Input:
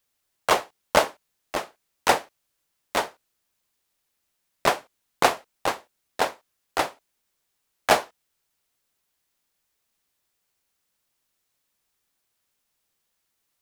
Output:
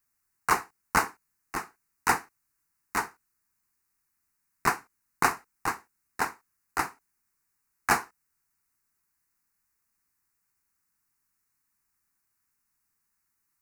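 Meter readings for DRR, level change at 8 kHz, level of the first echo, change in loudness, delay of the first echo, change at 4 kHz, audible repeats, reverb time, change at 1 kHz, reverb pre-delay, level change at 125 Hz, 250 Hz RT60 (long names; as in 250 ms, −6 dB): no reverb audible, −2.5 dB, no echo audible, −4.5 dB, no echo audible, −11.0 dB, no echo audible, no reverb audible, −3.5 dB, no reverb audible, −1.0 dB, no reverb audible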